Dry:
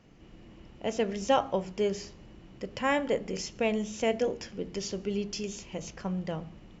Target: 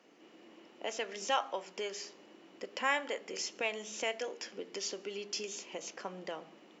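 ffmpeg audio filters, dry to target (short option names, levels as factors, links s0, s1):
-filter_complex "[0:a]highpass=f=290:w=0.5412,highpass=f=290:w=1.3066,acrossover=split=880[s0][s1];[s0]acompressor=threshold=0.01:ratio=6[s2];[s2][s1]amix=inputs=2:normalize=0"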